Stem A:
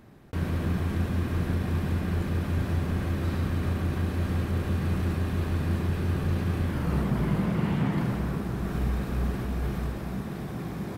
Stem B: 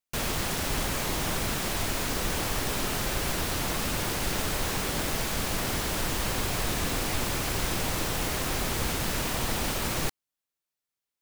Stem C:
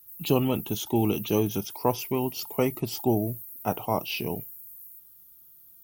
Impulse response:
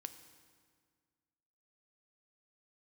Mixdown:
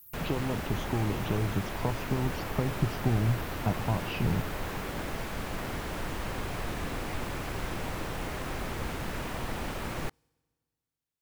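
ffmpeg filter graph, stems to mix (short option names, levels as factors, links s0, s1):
-filter_complex "[1:a]volume=0.596,asplit=2[s0][s1];[s1]volume=0.0708[s2];[2:a]acompressor=threshold=0.0355:ratio=6,asubboost=boost=8.5:cutoff=140,volume=1.12[s3];[3:a]atrim=start_sample=2205[s4];[s2][s4]afir=irnorm=-1:irlink=0[s5];[s0][s3][s5]amix=inputs=3:normalize=0,acrossover=split=2700[s6][s7];[s7]acompressor=threshold=0.00447:ratio=4:attack=1:release=60[s8];[s6][s8]amix=inputs=2:normalize=0"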